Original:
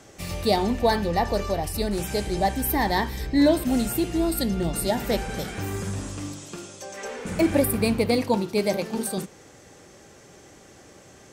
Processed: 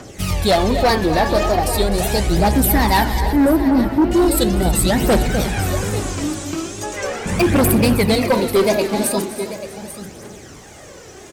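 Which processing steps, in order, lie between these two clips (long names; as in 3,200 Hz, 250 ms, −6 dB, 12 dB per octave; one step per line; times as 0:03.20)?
0:03.20–0:04.11: Gaussian smoothing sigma 4.2 samples
tape wow and flutter 120 cents
on a send: single-tap delay 839 ms −15 dB
on the sum: phase shifter 0.39 Hz, delay 3.6 ms, feedback 51%
slap from a distant wall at 43 metres, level −12 dB
in parallel at −10 dB: sine wavefolder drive 11 dB, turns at −6 dBFS
on the sum: feedback echo at a low word length 322 ms, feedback 35%, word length 8 bits, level −14 dB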